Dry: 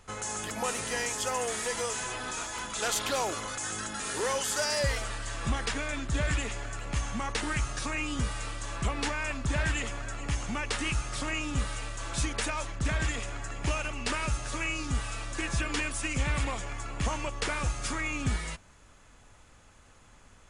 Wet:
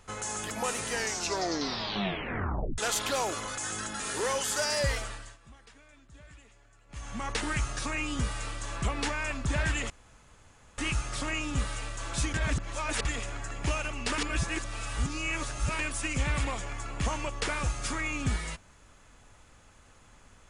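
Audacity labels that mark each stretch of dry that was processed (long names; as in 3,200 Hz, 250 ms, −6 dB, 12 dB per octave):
0.900000	0.900000	tape stop 1.88 s
4.940000	7.320000	duck −23.5 dB, fades 0.44 s
9.900000	10.780000	fill with room tone
12.340000	13.050000	reverse
14.180000	15.790000	reverse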